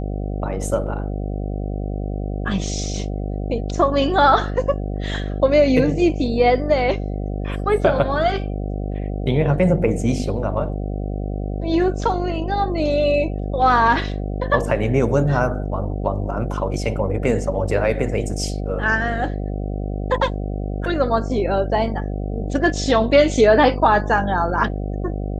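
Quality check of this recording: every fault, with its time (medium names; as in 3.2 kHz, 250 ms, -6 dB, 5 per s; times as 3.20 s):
buzz 50 Hz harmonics 15 -25 dBFS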